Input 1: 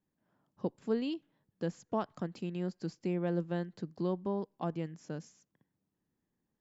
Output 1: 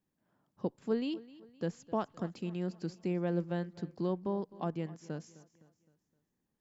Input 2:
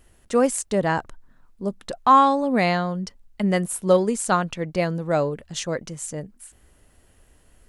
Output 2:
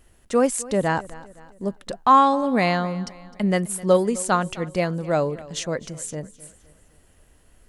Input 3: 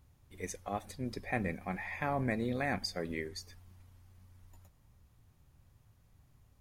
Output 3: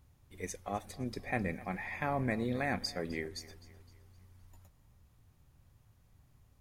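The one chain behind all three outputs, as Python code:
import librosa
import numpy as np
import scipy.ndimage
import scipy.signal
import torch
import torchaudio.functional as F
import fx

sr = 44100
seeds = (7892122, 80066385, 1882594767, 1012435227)

y = fx.echo_feedback(x, sr, ms=258, feedback_pct=46, wet_db=-19.5)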